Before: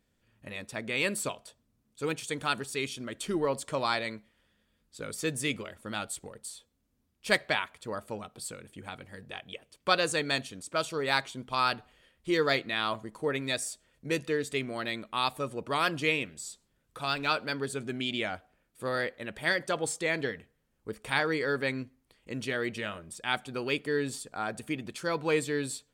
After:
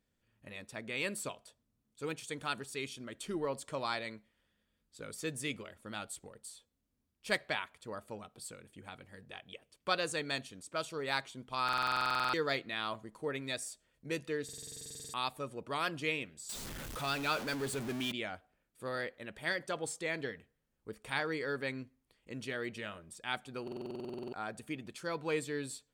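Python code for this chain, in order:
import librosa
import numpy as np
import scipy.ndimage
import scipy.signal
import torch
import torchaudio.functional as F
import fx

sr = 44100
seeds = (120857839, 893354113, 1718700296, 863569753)

y = fx.zero_step(x, sr, step_db=-30.5, at=(16.49, 18.12))
y = fx.buffer_glitch(y, sr, at_s=(11.64, 14.44, 23.63), block=2048, repeats=14)
y = y * 10.0 ** (-7.0 / 20.0)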